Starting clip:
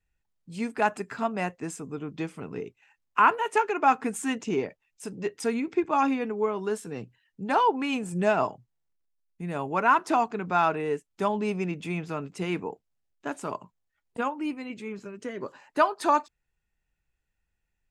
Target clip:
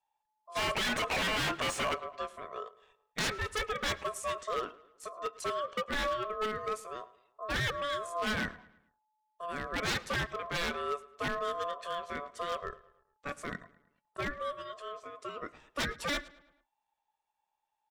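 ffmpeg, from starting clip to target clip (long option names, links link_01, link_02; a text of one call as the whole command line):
ffmpeg -i in.wav -filter_complex "[0:a]asplit=3[link_01][link_02][link_03];[link_01]afade=type=out:start_time=0.55:duration=0.02[link_04];[link_02]asplit=2[link_05][link_06];[link_06]highpass=frequency=720:poles=1,volume=38dB,asoftclip=type=tanh:threshold=-10dB[link_07];[link_05][link_07]amix=inputs=2:normalize=0,lowpass=frequency=1100:poles=1,volume=-6dB,afade=type=in:start_time=0.55:duration=0.02,afade=type=out:start_time=1.93:duration=0.02[link_08];[link_03]afade=type=in:start_time=1.93:duration=0.02[link_09];[link_04][link_08][link_09]amix=inputs=3:normalize=0,aeval=exprs='val(0)*sin(2*PI*860*n/s)':channel_layout=same,aeval=exprs='0.075*(abs(mod(val(0)/0.075+3,4)-2)-1)':channel_layout=same,asplit=2[link_10][link_11];[link_11]adelay=108,lowpass=frequency=4200:poles=1,volume=-19.5dB,asplit=2[link_12][link_13];[link_13]adelay=108,lowpass=frequency=4200:poles=1,volume=0.49,asplit=2[link_14][link_15];[link_15]adelay=108,lowpass=frequency=4200:poles=1,volume=0.49,asplit=2[link_16][link_17];[link_17]adelay=108,lowpass=frequency=4200:poles=1,volume=0.49[link_18];[link_12][link_14][link_16][link_18]amix=inputs=4:normalize=0[link_19];[link_10][link_19]amix=inputs=2:normalize=0,volume=-3dB" out.wav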